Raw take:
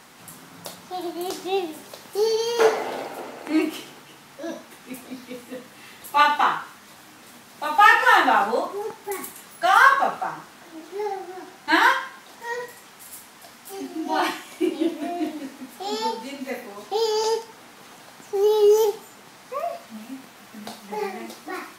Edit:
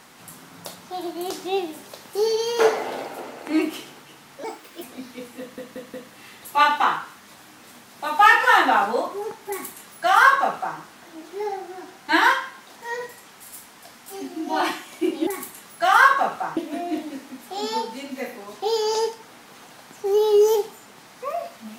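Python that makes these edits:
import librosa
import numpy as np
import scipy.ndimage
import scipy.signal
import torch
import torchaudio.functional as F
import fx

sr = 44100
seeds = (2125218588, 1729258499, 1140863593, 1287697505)

y = fx.edit(x, sr, fx.speed_span(start_s=4.44, length_s=0.52, speed=1.34),
    fx.stutter(start_s=5.53, slice_s=0.18, count=4),
    fx.duplicate(start_s=9.08, length_s=1.3, to_s=14.86), tone=tone)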